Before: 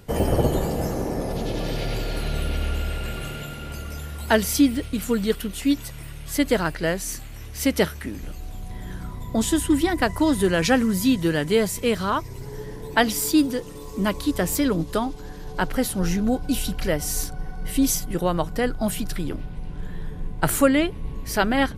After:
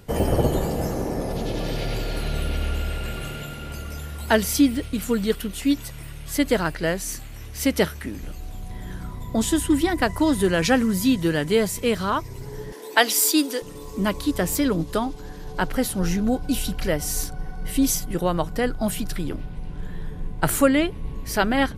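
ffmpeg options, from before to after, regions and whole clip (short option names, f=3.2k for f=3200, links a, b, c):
-filter_complex "[0:a]asettb=1/sr,asplit=3[a][b][c];[a]atrim=end=12.724[d];[b]atrim=start=12.72:end=13.62,asetpts=PTS-STARTPTS,afade=t=in:d=0.004:c=qsin,afade=t=out:st=0.896:d=0.004:c=qsin,highpass=f=300:w=0.5412,highpass=f=300:w=1.3066,highshelf=f=2k:g=6.5[e];[c]atrim=start=13.616[f];[d][e]acrossfade=d=0.004:c1=hsin:c2=qsin[g];[g][f]acrossfade=d=0.004:c1=qsin:c2=hsin"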